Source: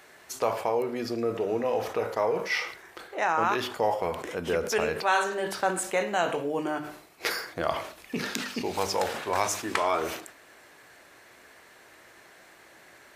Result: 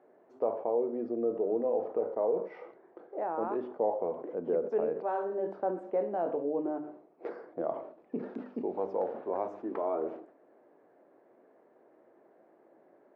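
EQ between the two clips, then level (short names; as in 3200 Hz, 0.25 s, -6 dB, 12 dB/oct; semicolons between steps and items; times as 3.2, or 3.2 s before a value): Butterworth band-pass 390 Hz, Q 0.85; -1.5 dB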